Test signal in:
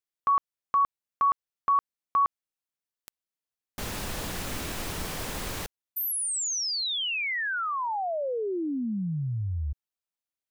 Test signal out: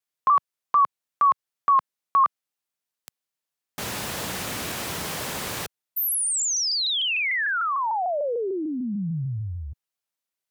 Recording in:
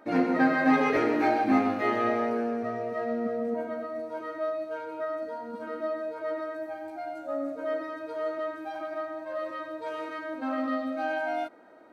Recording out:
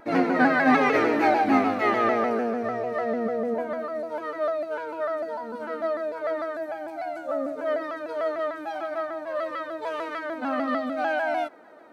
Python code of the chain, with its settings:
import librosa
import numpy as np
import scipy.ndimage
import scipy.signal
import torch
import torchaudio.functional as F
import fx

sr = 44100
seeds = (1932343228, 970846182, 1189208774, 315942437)

y = scipy.signal.sosfilt(scipy.signal.butter(2, 120.0, 'highpass', fs=sr, output='sos'), x)
y = fx.peak_eq(y, sr, hz=280.0, db=-3.5, octaves=1.3)
y = fx.vibrato_shape(y, sr, shape='saw_down', rate_hz=6.7, depth_cents=100.0)
y = y * 10.0 ** (5.0 / 20.0)